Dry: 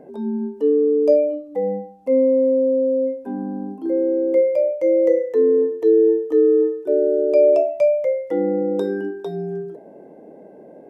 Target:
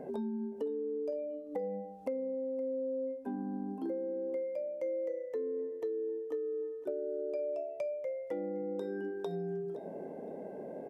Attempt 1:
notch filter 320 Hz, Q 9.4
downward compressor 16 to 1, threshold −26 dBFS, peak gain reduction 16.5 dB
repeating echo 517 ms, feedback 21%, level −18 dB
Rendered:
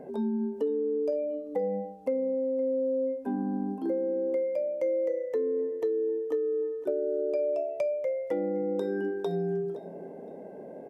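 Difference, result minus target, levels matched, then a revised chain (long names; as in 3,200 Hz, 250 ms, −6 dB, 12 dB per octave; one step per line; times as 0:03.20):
downward compressor: peak gain reduction −7.5 dB
notch filter 320 Hz, Q 9.4
downward compressor 16 to 1, threshold −34 dBFS, peak gain reduction 24 dB
repeating echo 517 ms, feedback 21%, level −18 dB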